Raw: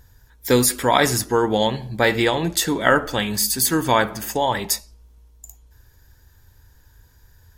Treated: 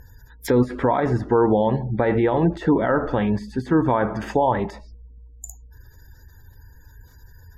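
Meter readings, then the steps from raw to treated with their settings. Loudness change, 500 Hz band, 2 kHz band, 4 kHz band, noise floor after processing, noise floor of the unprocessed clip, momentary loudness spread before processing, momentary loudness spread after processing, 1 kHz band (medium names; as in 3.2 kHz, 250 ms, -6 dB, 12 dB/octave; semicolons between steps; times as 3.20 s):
-1.5 dB, +0.5 dB, -8.5 dB, -19.0 dB, -49 dBFS, -54 dBFS, 6 LU, 13 LU, -2.0 dB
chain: spectral gate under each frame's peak -30 dB strong; peak limiter -13.5 dBFS, peak gain reduction 11.5 dB; low-pass that closes with the level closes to 1.1 kHz, closed at -23 dBFS; trim +5.5 dB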